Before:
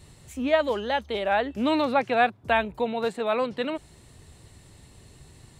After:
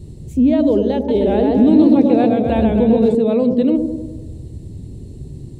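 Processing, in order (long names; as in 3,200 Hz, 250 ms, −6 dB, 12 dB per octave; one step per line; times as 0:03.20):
drawn EQ curve 360 Hz 0 dB, 630 Hz −14 dB, 1,400 Hz −29 dB, 4,300 Hz −18 dB
delay with a low-pass on its return 99 ms, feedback 59%, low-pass 600 Hz, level −4.5 dB
boost into a limiter +22.5 dB
0:00.95–0:03.15: feedback echo with a swinging delay time 130 ms, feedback 62%, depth 116 cents, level −4 dB
level −5.5 dB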